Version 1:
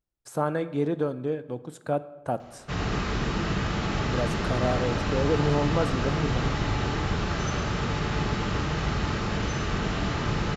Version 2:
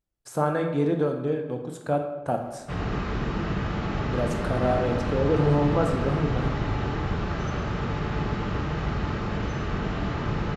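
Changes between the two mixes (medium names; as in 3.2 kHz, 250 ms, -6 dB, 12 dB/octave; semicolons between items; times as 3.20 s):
speech: send +11.5 dB; background: add low-pass 1.8 kHz 6 dB/octave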